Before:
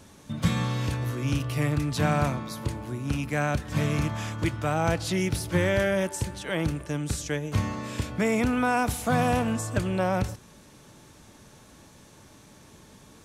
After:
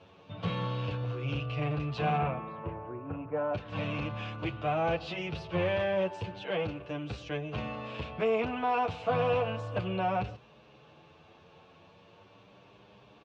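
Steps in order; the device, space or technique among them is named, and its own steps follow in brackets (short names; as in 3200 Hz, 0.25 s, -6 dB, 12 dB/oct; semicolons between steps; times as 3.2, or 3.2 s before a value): 2.17–3.53 LPF 2900 Hz -> 1200 Hz 24 dB/oct; barber-pole flanger into a guitar amplifier (endless flanger 8.6 ms +0.34 Hz; soft clip -21.5 dBFS, distortion -17 dB; speaker cabinet 86–3900 Hz, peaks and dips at 250 Hz -8 dB, 480 Hz +7 dB, 710 Hz +7 dB, 1100 Hz +4 dB, 1900 Hz -5 dB, 2700 Hz +9 dB); gain -2.5 dB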